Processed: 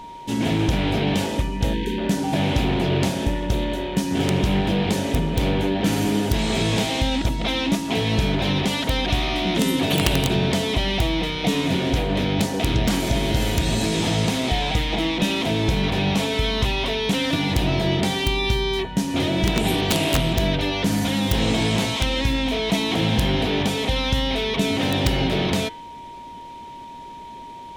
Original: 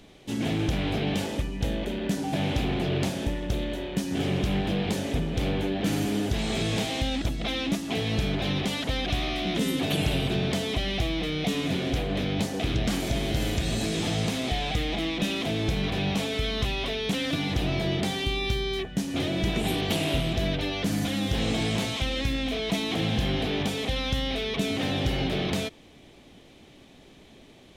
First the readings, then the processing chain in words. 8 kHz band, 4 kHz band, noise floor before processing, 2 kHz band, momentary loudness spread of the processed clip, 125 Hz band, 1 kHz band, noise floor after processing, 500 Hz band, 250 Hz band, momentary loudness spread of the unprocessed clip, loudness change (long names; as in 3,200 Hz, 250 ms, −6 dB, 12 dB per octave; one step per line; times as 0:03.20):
+6.5 dB, +6.0 dB, −52 dBFS, +6.0 dB, 4 LU, +6.0 dB, +8.0 dB, −38 dBFS, +6.0 dB, +6.0 dB, 3 LU, +6.0 dB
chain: hum removal 152.7 Hz, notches 29
wrap-around overflow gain 16 dB
time-frequency box erased 0:01.74–0:01.98, 520–1,500 Hz
steady tone 940 Hz −42 dBFS
level +6 dB